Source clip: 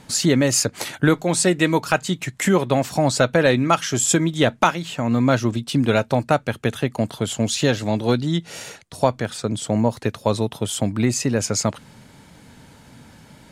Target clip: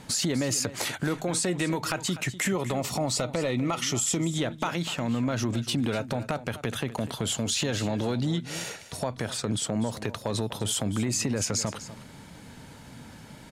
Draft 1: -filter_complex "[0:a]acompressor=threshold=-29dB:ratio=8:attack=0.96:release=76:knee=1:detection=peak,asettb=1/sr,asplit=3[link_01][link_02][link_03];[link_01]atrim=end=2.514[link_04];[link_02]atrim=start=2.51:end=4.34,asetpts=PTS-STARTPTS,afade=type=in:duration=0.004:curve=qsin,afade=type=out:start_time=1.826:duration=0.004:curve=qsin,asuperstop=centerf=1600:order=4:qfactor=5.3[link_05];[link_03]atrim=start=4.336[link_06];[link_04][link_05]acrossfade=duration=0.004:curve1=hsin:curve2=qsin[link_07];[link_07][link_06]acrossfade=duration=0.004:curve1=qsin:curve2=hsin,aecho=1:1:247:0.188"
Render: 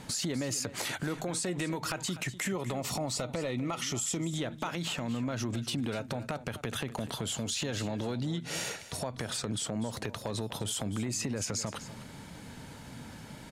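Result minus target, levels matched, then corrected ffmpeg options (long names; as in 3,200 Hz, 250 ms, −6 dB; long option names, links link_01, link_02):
downward compressor: peak gain reduction +6 dB
-filter_complex "[0:a]acompressor=threshold=-22dB:ratio=8:attack=0.96:release=76:knee=1:detection=peak,asettb=1/sr,asplit=3[link_01][link_02][link_03];[link_01]atrim=end=2.514[link_04];[link_02]atrim=start=2.51:end=4.34,asetpts=PTS-STARTPTS,afade=type=in:duration=0.004:curve=qsin,afade=type=out:start_time=1.826:duration=0.004:curve=qsin,asuperstop=centerf=1600:order=4:qfactor=5.3[link_05];[link_03]atrim=start=4.336[link_06];[link_04][link_05]acrossfade=duration=0.004:curve1=hsin:curve2=qsin[link_07];[link_07][link_06]acrossfade=duration=0.004:curve1=qsin:curve2=hsin,aecho=1:1:247:0.188"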